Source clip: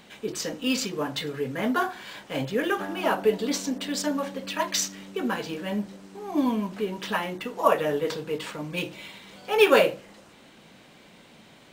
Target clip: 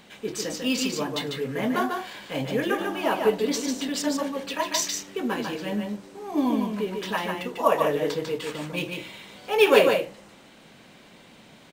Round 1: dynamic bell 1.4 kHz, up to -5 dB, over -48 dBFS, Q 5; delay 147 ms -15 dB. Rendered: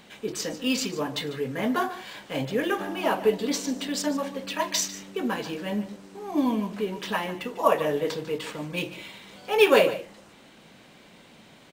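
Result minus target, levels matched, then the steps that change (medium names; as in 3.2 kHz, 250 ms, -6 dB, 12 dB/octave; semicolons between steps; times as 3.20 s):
echo-to-direct -10.5 dB
change: delay 147 ms -4.5 dB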